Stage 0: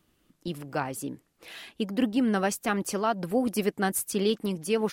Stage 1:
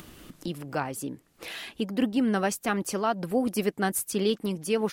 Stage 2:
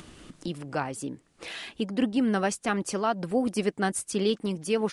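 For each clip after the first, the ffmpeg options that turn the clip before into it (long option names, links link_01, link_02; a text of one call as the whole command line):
ffmpeg -i in.wav -af "acompressor=mode=upward:threshold=-31dB:ratio=2.5" out.wav
ffmpeg -i in.wav -af "aresample=22050,aresample=44100" out.wav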